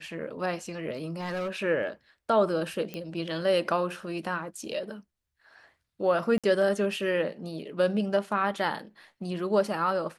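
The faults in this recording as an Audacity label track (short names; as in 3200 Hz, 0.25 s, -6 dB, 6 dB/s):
0.960000	1.510000	clipped -28 dBFS
2.940000	2.940000	pop -21 dBFS
6.380000	6.440000	gap 56 ms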